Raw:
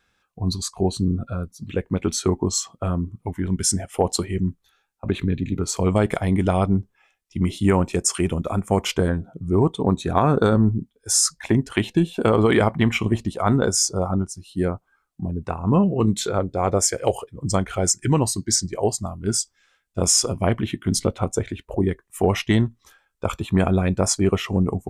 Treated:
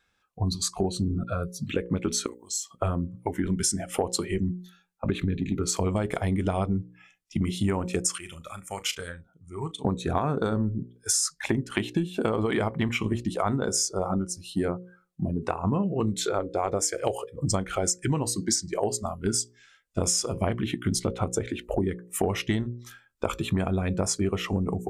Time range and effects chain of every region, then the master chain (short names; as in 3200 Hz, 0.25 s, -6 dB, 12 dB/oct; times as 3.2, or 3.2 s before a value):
2.26–2.71 pre-emphasis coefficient 0.97 + compressor 2:1, threshold -40 dBFS
8.18–9.85 passive tone stack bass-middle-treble 5-5-5 + doubler 37 ms -14 dB
whole clip: spectral noise reduction 10 dB; notches 60/120/180/240/300/360/420/480/540 Hz; compressor 6:1, threshold -29 dBFS; gain +5.5 dB